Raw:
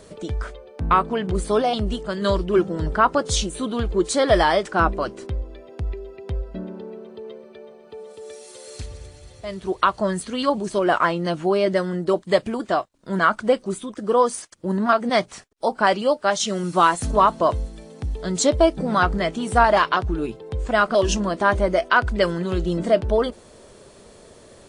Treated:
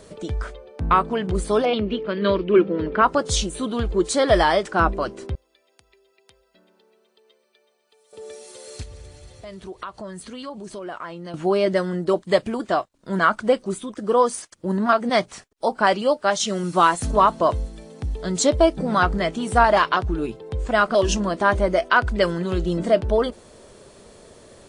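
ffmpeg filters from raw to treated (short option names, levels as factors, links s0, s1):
-filter_complex "[0:a]asettb=1/sr,asplit=3[s0][s1][s2];[s0]atrim=end=1.654[s3];[s1]atrim=start=1.65:end=3.02,asetpts=PTS-STARTPTS,afade=t=in:d=0.004:c=qsin,afade=t=out:st=1.366:d=0.004:c=qsin,highpass=110,equalizer=f=140:t=q:w=4:g=-10,equalizer=f=210:t=q:w=4:g=3,equalizer=f=300:t=q:w=4:g=5,equalizer=f=470:t=q:w=4:g=7,equalizer=f=760:t=q:w=4:g=-7,equalizer=f=2400:t=q:w=4:g=9,lowpass=f=3800:w=0.5412,lowpass=f=3800:w=1.3066[s4];[s2]atrim=start=3.016[s5];[s3][s4]acrossfade=d=0.004:c1=hsin:c2=qsin[s6];[s6][s5]acrossfade=d=0.004:c1=qsin:c2=hsin,asettb=1/sr,asplit=3[s7][s8][s9];[s7]atrim=end=5.354[s10];[s8]atrim=start=5.35:end=8.13,asetpts=PTS-STARTPTS,afade=t=in:d=0.004:c=qsin,afade=t=out:st=2.776:d=0.004:c=qsin,aderivative[s11];[s9]atrim=start=8.126[s12];[s10][s11]acrossfade=d=0.004:c1=hsin:c2=qsin[s13];[s13][s12]acrossfade=d=0.004:c1=qsin:c2=hsin,asettb=1/sr,asplit=3[s14][s15][s16];[s14]atrim=end=8.834[s17];[s15]atrim=start=8.83:end=11.34,asetpts=PTS-STARTPTS,afade=t=in:d=0.004:c=qsin,afade=t=out:st=2.506:d=0.004:c=qsin,acompressor=threshold=0.0141:ratio=2.5:attack=3.2:release=140:knee=1:detection=peak[s18];[s16]atrim=start=11.336[s19];[s17][s18]acrossfade=d=0.004:c1=hsin:c2=qsin[s20];[s20][s19]acrossfade=d=0.004:c1=qsin:c2=hsin"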